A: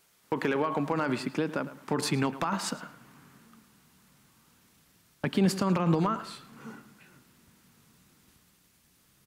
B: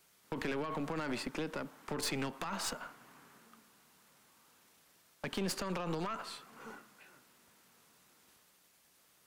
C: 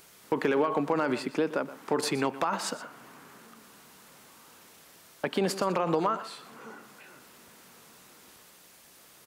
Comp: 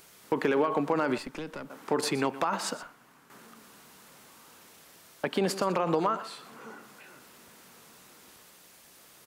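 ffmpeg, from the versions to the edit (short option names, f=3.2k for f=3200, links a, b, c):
-filter_complex "[1:a]asplit=2[a][b];[2:a]asplit=3[c][d][e];[c]atrim=end=1.182[f];[a]atrim=start=1.178:end=1.702[g];[d]atrim=start=1.698:end=2.832[h];[b]atrim=start=2.828:end=3.302[i];[e]atrim=start=3.298[j];[f][g]acrossfade=d=0.004:c1=hsin:c2=hsin[k];[k][h]acrossfade=d=0.004:c1=hsin:c2=hsin[l];[l][i]acrossfade=d=0.004:c1=hsin:c2=hsin[m];[m][j]acrossfade=d=0.004:c1=hsin:c2=hsin"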